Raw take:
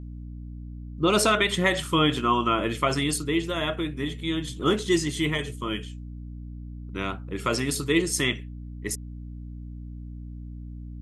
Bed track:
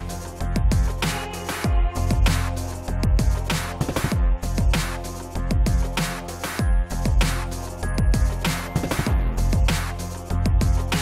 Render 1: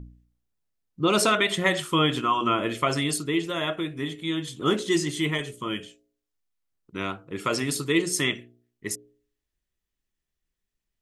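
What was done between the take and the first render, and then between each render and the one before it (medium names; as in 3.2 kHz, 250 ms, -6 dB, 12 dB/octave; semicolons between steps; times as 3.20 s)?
de-hum 60 Hz, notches 11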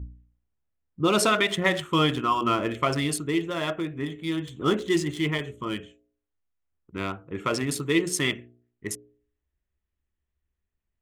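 local Wiener filter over 9 samples; peaking EQ 72 Hz +14.5 dB 0.44 oct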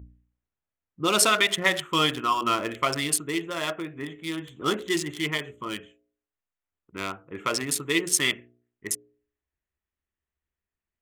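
local Wiener filter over 9 samples; tilt EQ +2.5 dB/octave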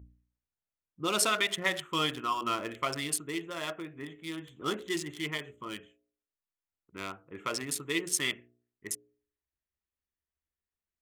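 trim -7 dB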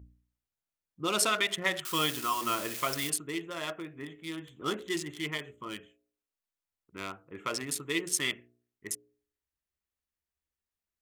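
1.85–3.10 s: zero-crossing glitches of -26.5 dBFS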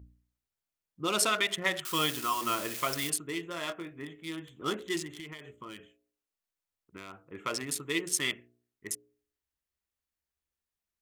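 3.28–3.92 s: doubling 23 ms -9 dB; 5.06–7.18 s: compression 10:1, threshold -39 dBFS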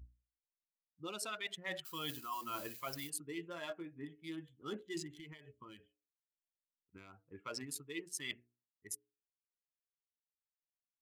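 expander on every frequency bin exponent 1.5; reverse; compression 10:1, threshold -39 dBFS, peak gain reduction 15.5 dB; reverse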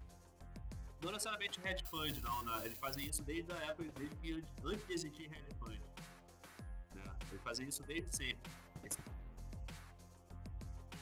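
add bed track -30 dB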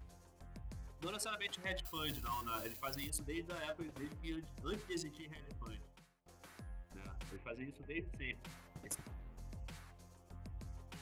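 5.74–6.26 s: fade out quadratic, to -23.5 dB; 7.36–8.33 s: FFT filter 650 Hz 0 dB, 1.3 kHz -10 dB, 2.5 kHz +4 dB, 5 kHz -30 dB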